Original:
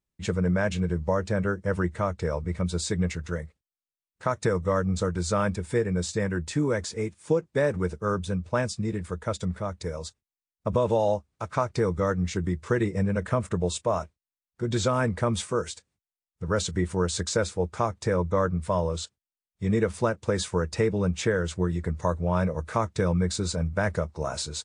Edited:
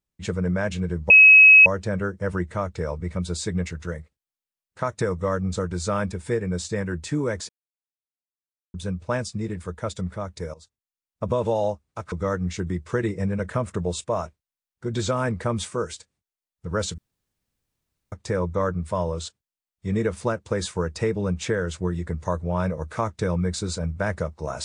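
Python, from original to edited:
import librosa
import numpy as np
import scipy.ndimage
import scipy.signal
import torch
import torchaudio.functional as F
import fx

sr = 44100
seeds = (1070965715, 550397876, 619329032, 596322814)

y = fx.edit(x, sr, fx.insert_tone(at_s=1.1, length_s=0.56, hz=2560.0, db=-7.0),
    fx.silence(start_s=6.93, length_s=1.25),
    fx.fade_in_from(start_s=9.98, length_s=0.7, floor_db=-16.0),
    fx.cut(start_s=11.56, length_s=0.33),
    fx.room_tone_fill(start_s=16.75, length_s=1.14), tone=tone)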